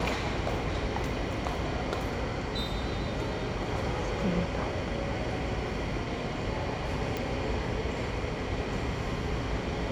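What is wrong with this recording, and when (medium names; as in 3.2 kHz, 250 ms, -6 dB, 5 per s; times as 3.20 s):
7.17 s: pop -18 dBFS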